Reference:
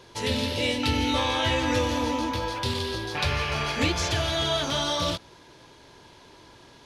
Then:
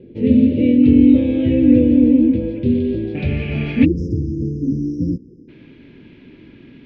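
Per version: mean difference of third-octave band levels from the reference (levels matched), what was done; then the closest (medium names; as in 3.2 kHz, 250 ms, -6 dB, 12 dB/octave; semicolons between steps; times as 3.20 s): 18.5 dB: spectral selection erased 3.85–5.48 s, 520–4900 Hz; FFT filter 100 Hz 0 dB, 250 Hz +12 dB, 1 kHz -28 dB, 2.4 kHz +14 dB, 6.3 kHz 0 dB; low-pass sweep 520 Hz -> 1.1 kHz, 2.68–4.15 s; trim +7 dB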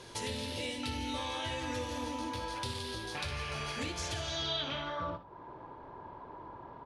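5.0 dB: compression 3:1, threshold -40 dBFS, peak gain reduction 15.5 dB; low-pass sweep 10 kHz -> 1 kHz, 4.11–5.17 s; on a send: early reflections 60 ms -11.5 dB, 76 ms -15.5 dB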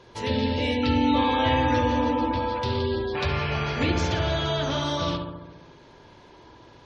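7.0 dB: on a send: filtered feedback delay 69 ms, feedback 68%, low-pass 2.2 kHz, level -4 dB; on the sum: spectral gate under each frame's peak -30 dB strong; treble shelf 3.5 kHz -8.5 dB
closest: second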